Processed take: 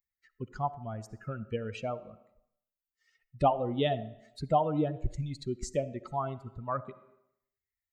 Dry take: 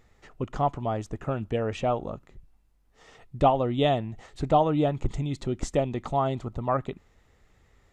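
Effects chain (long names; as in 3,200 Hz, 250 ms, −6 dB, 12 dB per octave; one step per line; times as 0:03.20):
spectral dynamics exaggerated over time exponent 2
on a send at −19.5 dB: parametric band 440 Hz +7.5 dB 2.2 octaves + convolution reverb RT60 0.75 s, pre-delay 20 ms
on the sum: one half of a high-frequency compander encoder only
level −2 dB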